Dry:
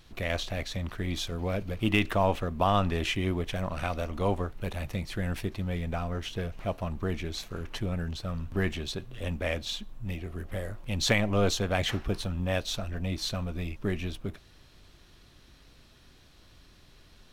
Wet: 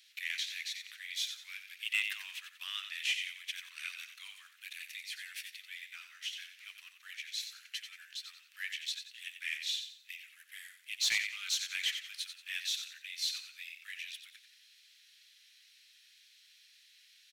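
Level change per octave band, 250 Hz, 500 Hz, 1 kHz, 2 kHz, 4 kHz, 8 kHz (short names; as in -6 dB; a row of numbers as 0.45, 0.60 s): under -40 dB, under -40 dB, -27.5 dB, -2.5 dB, 0.0 dB, 0.0 dB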